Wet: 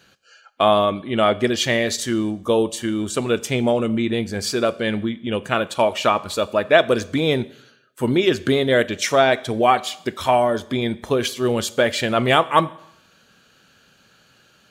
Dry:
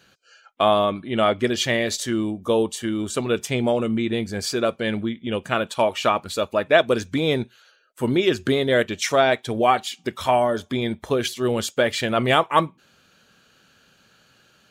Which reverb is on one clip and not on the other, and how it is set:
four-comb reverb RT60 0.77 s, combs from 30 ms, DRR 18 dB
level +2 dB

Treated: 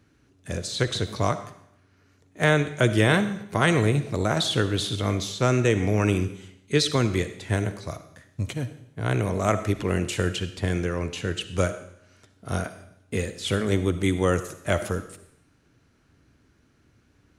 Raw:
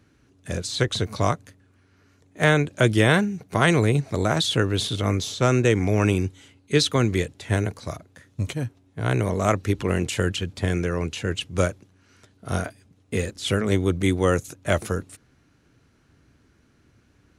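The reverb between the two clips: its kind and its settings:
comb and all-pass reverb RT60 0.73 s, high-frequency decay 1×, pre-delay 20 ms, DRR 11 dB
level −2 dB

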